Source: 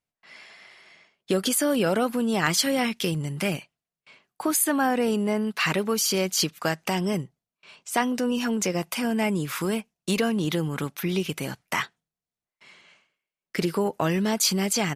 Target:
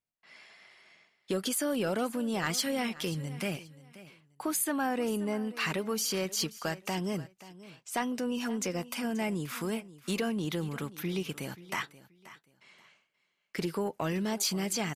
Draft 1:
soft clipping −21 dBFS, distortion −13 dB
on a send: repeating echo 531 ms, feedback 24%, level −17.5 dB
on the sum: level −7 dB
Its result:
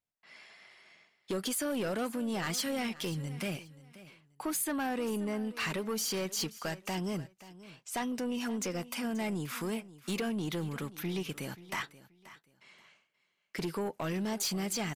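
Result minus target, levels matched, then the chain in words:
soft clipping: distortion +12 dB
soft clipping −11.5 dBFS, distortion −25 dB
on a send: repeating echo 531 ms, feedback 24%, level −17.5 dB
on the sum: level −7 dB

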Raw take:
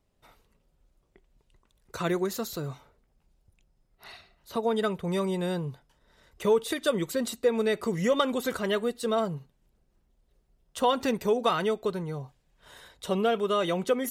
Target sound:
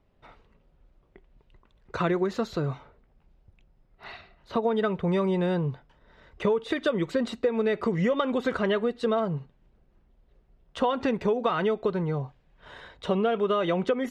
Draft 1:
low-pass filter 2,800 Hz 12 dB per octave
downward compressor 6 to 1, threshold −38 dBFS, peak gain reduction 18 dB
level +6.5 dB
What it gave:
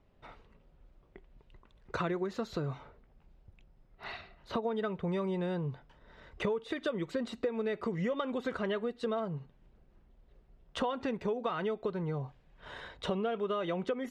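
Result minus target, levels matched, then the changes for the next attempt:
downward compressor: peak gain reduction +8.5 dB
change: downward compressor 6 to 1, threshold −28 dBFS, peak gain reduction 10 dB

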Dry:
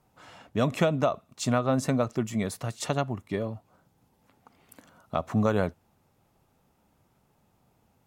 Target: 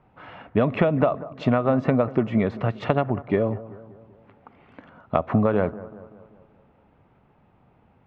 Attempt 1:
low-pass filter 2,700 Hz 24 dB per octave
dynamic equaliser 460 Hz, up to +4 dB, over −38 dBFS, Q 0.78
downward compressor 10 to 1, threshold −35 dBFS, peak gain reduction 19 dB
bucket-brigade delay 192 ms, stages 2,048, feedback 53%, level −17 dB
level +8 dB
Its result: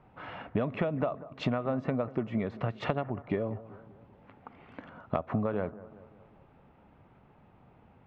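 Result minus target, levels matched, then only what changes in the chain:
downward compressor: peak gain reduction +10.5 dB
change: downward compressor 10 to 1, threshold −23.5 dBFS, peak gain reduction 8.5 dB

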